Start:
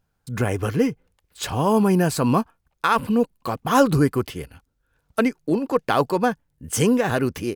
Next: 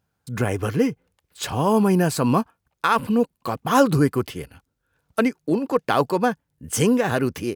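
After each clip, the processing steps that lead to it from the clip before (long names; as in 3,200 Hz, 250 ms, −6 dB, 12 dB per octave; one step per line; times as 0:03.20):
high-pass filter 72 Hz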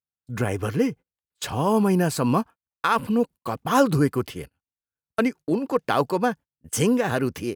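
noise gate −35 dBFS, range −28 dB
level −2 dB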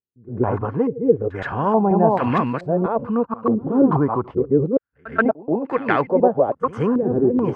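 delay that plays each chunk backwards 477 ms, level −2.5 dB
backwards echo 130 ms −19.5 dB
low-pass on a step sequencer 2.3 Hz 370–2,000 Hz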